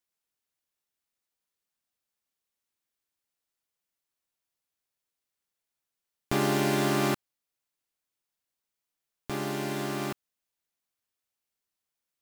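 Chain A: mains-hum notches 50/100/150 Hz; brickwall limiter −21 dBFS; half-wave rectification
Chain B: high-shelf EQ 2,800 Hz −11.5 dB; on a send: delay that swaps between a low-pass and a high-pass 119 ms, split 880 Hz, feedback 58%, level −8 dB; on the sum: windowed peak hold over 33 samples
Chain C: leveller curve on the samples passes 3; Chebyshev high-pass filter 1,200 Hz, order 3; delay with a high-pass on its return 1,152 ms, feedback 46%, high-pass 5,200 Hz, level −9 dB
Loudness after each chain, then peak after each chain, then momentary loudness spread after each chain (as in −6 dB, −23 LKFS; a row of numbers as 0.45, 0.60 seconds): −36.5, −31.0, −28.5 LKFS; −21.0, −16.0, −10.5 dBFS; 8, 17, 21 LU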